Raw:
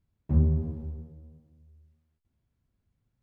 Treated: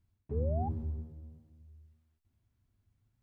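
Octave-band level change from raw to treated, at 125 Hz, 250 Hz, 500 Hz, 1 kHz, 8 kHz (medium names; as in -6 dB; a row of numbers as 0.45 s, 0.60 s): -8.0 dB, -9.5 dB, +3.0 dB, +13.0 dB, no reading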